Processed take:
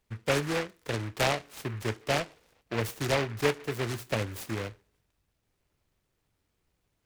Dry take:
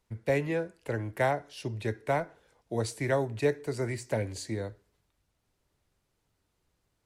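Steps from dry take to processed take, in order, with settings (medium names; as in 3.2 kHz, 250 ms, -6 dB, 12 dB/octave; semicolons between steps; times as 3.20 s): delay time shaken by noise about 1.5 kHz, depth 0.19 ms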